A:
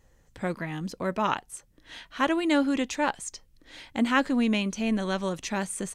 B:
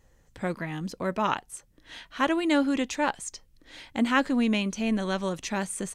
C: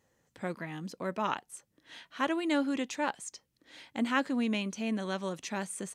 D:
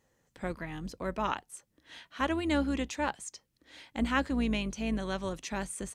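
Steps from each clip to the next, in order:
nothing audible
HPF 140 Hz 12 dB/oct; gain -5.5 dB
octaver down 2 oct, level -6 dB

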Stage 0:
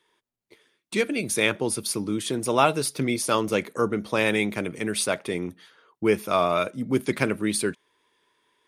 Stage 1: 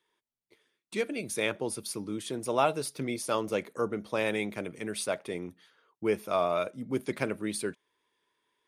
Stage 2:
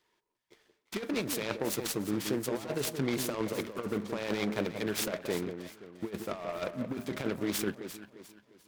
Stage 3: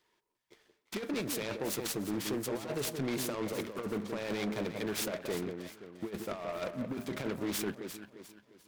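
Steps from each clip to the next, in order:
dynamic EQ 620 Hz, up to +5 dB, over -34 dBFS, Q 1.2; gain -9 dB
negative-ratio compressor -32 dBFS, ratio -0.5; echo with dull and thin repeats by turns 0.175 s, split 1100 Hz, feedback 58%, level -7 dB; noise-modulated delay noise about 1200 Hz, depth 0.055 ms
soft clip -27.5 dBFS, distortion -14 dB

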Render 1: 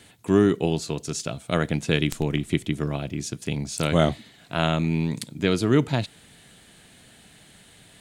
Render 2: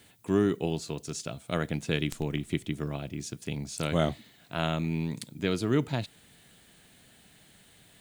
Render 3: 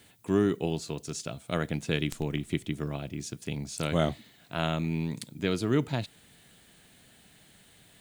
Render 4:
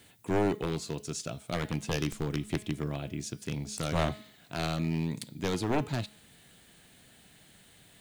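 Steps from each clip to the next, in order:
added noise violet -61 dBFS; gain -6.5 dB
nothing audible
one-sided fold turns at -23 dBFS; de-hum 211.6 Hz, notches 29

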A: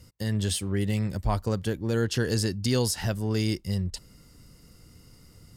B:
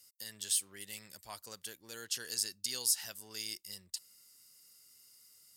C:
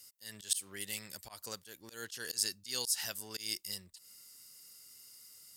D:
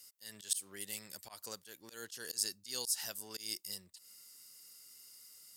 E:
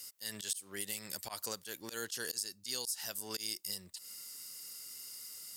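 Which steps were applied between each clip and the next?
differentiator
auto swell 0.149 s; gain +5.5 dB
HPF 170 Hz 6 dB/oct; dynamic EQ 2300 Hz, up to -5 dB, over -51 dBFS, Q 0.71; gain -1 dB
compressor 8:1, threshold -44 dBFS, peak gain reduction 15.5 dB; gain +9 dB

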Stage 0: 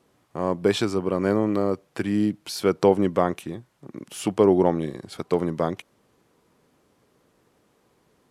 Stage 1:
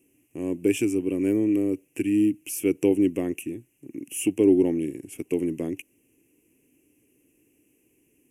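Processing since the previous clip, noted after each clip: EQ curve 110 Hz 0 dB, 200 Hz -4 dB, 290 Hz +11 dB, 600 Hz -10 dB, 1300 Hz -21 dB, 2700 Hz +12 dB, 4000 Hz -27 dB, 6000 Hz +3 dB, 11000 Hz +14 dB; gain -4.5 dB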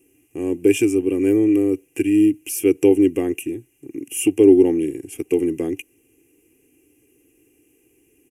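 comb 2.5 ms, depth 56%; gain +4.5 dB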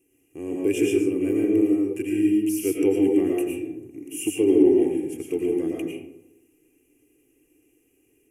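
reverb RT60 0.90 s, pre-delay 70 ms, DRR -2.5 dB; gain -8.5 dB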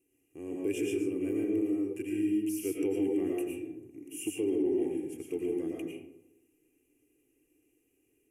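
limiter -13.5 dBFS, peak gain reduction 6.5 dB; gain -8.5 dB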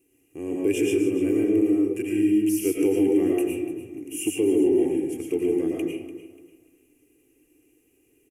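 feedback echo 0.293 s, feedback 31%, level -14 dB; gain +9 dB

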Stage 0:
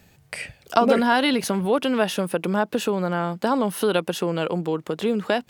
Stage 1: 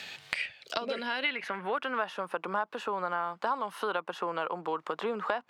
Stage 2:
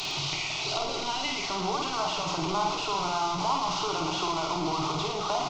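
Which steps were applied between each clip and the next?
band-pass sweep 3700 Hz -> 1100 Hz, 0.78–2.1; spectral gain 0.63–1.25, 680–3800 Hz -8 dB; three-band squash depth 100%
delta modulation 32 kbps, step -26 dBFS; fixed phaser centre 340 Hz, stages 8; on a send: reverse bouncing-ball echo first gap 50 ms, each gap 1.2×, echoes 5; on the sum: gain +3 dB

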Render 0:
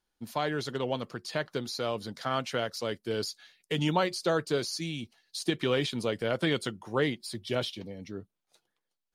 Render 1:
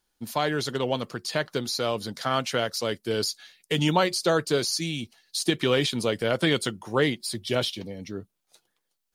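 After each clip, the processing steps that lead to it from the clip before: high shelf 4900 Hz +6.5 dB; gain +4.5 dB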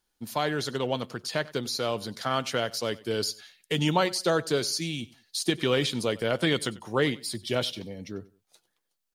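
feedback echo 94 ms, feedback 30%, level -21 dB; gain -2 dB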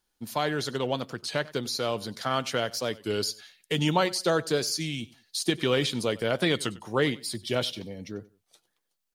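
record warp 33 1/3 rpm, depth 100 cents

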